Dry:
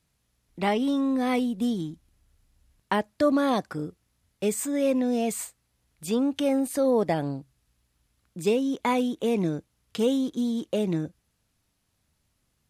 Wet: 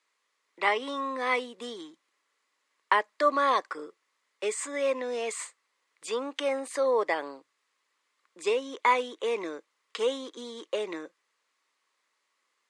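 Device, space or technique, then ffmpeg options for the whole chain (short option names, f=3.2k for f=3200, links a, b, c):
phone speaker on a table: -af "highpass=f=420:w=0.5412,highpass=f=420:w=1.3066,equalizer=f=700:t=q:w=4:g=-8,equalizer=f=1.1k:t=q:w=4:g=10,equalizer=f=2k:t=q:w=4:g=8,equalizer=f=5.7k:t=q:w=4:g=-3,lowpass=f=8.1k:w=0.5412,lowpass=f=8.1k:w=1.3066"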